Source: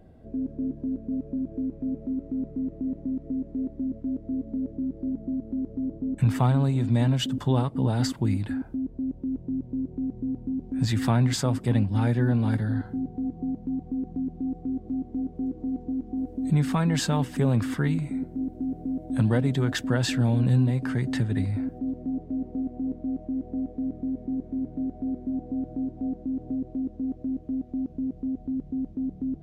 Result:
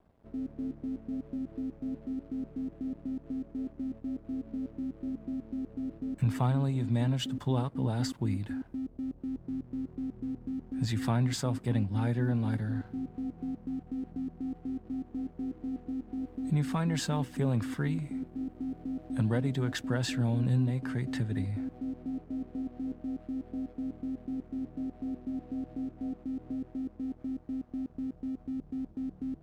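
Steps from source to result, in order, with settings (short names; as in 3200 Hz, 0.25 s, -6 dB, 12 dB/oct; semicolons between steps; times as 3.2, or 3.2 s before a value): crossover distortion -52.5 dBFS; gain -6 dB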